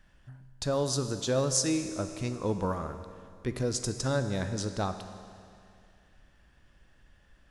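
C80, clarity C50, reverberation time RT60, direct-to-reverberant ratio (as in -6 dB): 10.0 dB, 9.0 dB, 2.4 s, 8.0 dB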